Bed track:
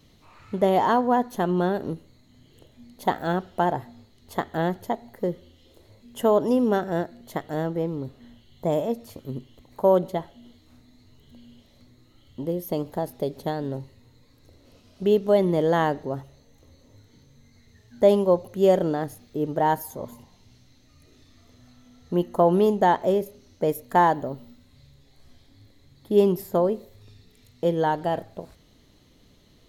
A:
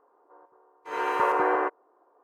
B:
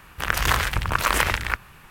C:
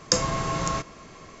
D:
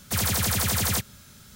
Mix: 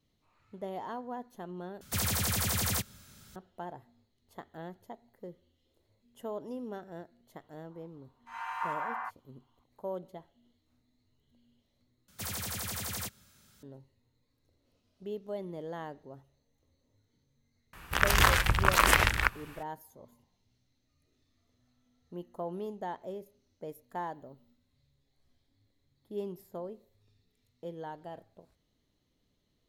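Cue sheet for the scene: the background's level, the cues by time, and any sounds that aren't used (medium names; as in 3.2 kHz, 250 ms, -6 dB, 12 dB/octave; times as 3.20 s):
bed track -19 dB
1.81 s: replace with D -6 dB + hard clipper -13.5 dBFS
7.41 s: add A -9.5 dB + steep high-pass 760 Hz 48 dB/octave
12.08 s: replace with D -12 dB + bass shelf 180 Hz -4 dB
17.73 s: add B -2 dB
not used: C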